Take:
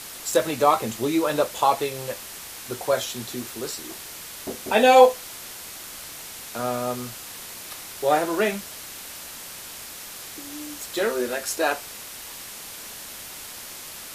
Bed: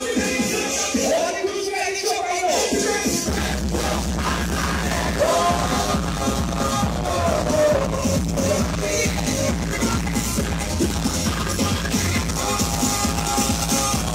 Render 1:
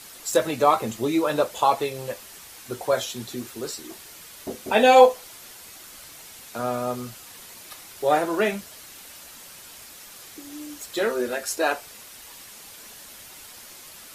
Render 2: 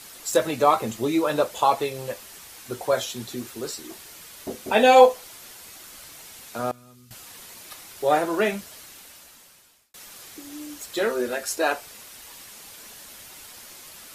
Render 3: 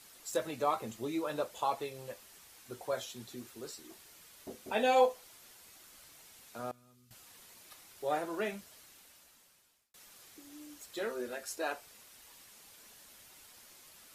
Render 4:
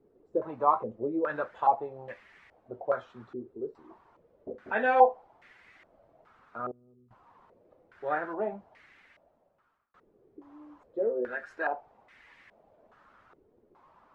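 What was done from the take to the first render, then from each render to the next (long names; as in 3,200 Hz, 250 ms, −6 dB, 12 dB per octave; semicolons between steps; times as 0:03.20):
broadband denoise 7 dB, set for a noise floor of −39 dBFS
0:06.71–0:07.11: guitar amp tone stack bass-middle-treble 6-0-2; 0:08.76–0:09.94: fade out
level −13 dB
low-pass on a step sequencer 2.4 Hz 410–2,000 Hz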